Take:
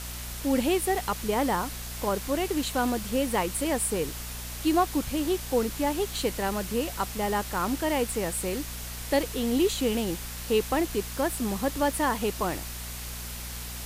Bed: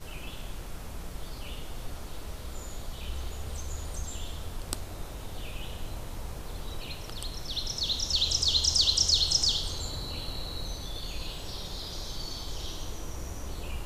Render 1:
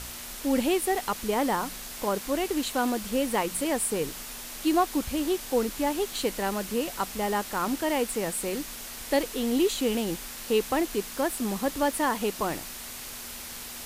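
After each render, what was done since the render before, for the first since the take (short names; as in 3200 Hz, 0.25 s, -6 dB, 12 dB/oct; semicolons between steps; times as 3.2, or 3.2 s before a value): de-hum 60 Hz, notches 3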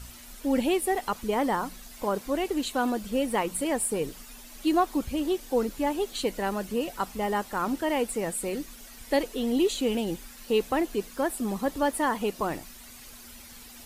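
denoiser 11 dB, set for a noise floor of -40 dBFS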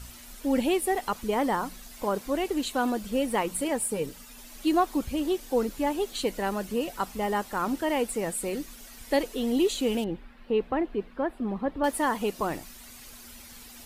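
3.68–4.38 notch comb 360 Hz; 10.04–11.84 air absorption 460 m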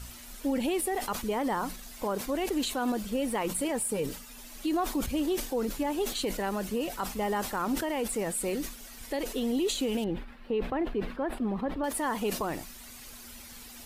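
limiter -21.5 dBFS, peak gain reduction 10 dB; sustainer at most 97 dB/s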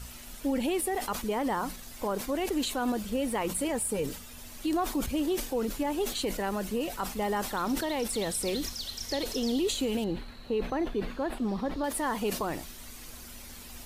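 add bed -14.5 dB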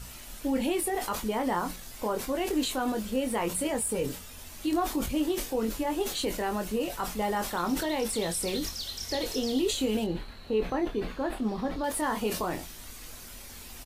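doubler 23 ms -6 dB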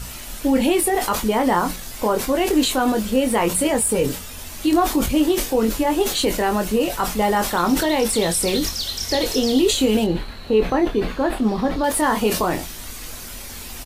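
gain +10.5 dB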